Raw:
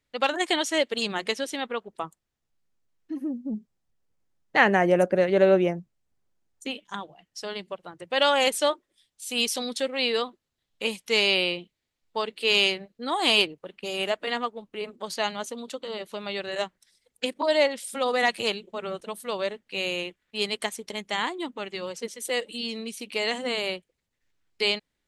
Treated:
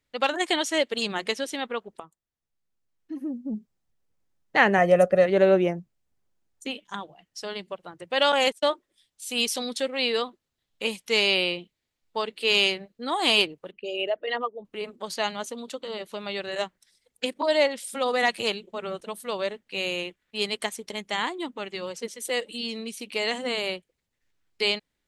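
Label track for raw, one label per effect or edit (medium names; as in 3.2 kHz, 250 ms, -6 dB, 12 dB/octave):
2.000000	3.540000	fade in, from -13.5 dB
4.780000	5.260000	comb 1.6 ms
8.320000	8.720000	gate -28 dBFS, range -42 dB
13.710000	14.650000	resonances exaggerated exponent 2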